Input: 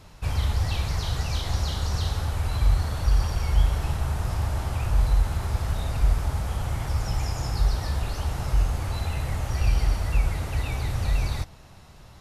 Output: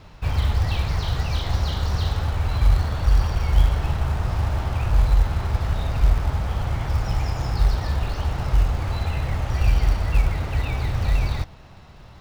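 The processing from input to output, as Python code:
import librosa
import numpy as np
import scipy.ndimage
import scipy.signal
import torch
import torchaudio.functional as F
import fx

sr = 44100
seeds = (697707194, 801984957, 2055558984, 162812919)

p1 = scipy.signal.sosfilt(scipy.signal.butter(2, 4200.0, 'lowpass', fs=sr, output='sos'), x)
p2 = fx.quant_float(p1, sr, bits=2)
y = p1 + F.gain(torch.from_numpy(p2), -6.0).numpy()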